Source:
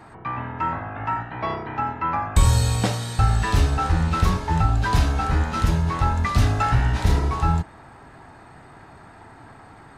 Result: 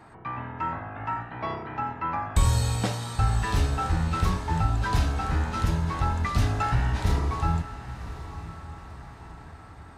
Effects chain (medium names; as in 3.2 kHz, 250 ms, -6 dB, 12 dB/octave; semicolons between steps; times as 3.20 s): echo that smears into a reverb 1054 ms, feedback 44%, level -13.5 dB; trim -5 dB